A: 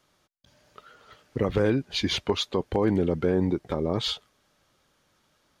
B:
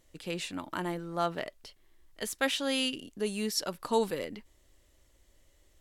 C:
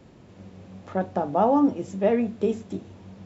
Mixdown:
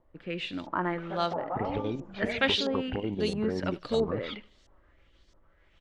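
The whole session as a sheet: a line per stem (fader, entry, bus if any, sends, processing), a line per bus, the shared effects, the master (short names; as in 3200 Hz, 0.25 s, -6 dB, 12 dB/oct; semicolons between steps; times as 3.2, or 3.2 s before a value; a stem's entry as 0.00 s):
-1.0 dB, 0.20 s, bus A, no send, no echo send, chopper 6.7 Hz, depth 60%, duty 75%
+3.0 dB, 0.00 s, no bus, no send, echo send -20 dB, rotary speaker horn 0.8 Hz
-7.5 dB, 0.15 s, bus A, no send, echo send -9 dB, tilt +2 dB/oct
bus A: 0.0 dB, envelope flanger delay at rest 6.1 ms, full sweep at -21.5 dBFS; compressor 2.5:1, threshold -32 dBFS, peak gain reduction 8.5 dB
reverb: off
echo: feedback echo 78 ms, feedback 33%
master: LFO low-pass saw up 1.5 Hz 890–5600 Hz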